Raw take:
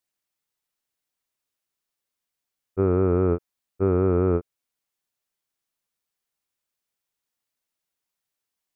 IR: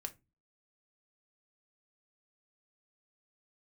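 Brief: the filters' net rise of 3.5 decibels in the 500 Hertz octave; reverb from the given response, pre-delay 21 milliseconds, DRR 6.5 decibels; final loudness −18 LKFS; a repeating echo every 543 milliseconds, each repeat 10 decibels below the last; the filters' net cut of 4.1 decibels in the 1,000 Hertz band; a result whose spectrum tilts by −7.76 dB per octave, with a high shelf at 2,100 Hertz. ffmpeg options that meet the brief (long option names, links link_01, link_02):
-filter_complex "[0:a]equalizer=frequency=500:width_type=o:gain=6,equalizer=frequency=1000:width_type=o:gain=-5.5,highshelf=frequency=2100:gain=-7.5,aecho=1:1:543|1086|1629|2172:0.316|0.101|0.0324|0.0104,asplit=2[link_01][link_02];[1:a]atrim=start_sample=2205,adelay=21[link_03];[link_02][link_03]afir=irnorm=-1:irlink=0,volume=-4dB[link_04];[link_01][link_04]amix=inputs=2:normalize=0,volume=2dB"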